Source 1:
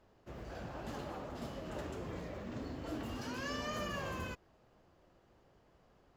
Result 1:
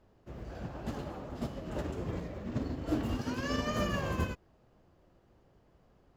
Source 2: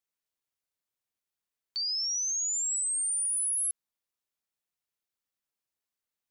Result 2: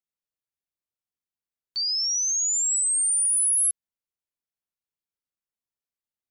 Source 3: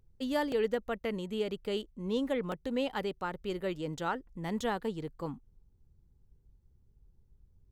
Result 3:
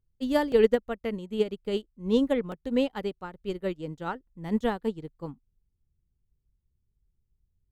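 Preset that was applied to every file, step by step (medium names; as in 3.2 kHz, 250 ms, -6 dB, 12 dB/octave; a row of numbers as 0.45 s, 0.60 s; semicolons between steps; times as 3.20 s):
bass shelf 410 Hz +7 dB; upward expansion 2.5:1, over -40 dBFS; trim +8 dB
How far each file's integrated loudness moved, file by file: +6.5 LU, +6.5 LU, +6.0 LU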